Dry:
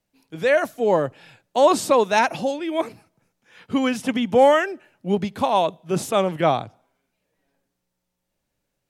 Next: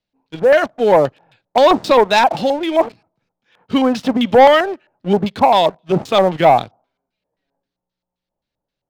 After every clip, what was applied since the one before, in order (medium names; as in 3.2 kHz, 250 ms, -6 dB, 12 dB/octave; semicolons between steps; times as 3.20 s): LFO low-pass square 3.8 Hz 850–4100 Hz; waveshaping leveller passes 2; trim -1.5 dB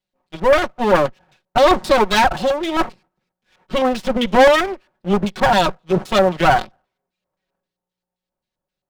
comb filter that takes the minimum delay 5.4 ms; trim -1 dB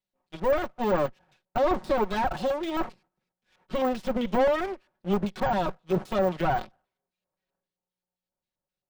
de-esser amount 80%; trim -8 dB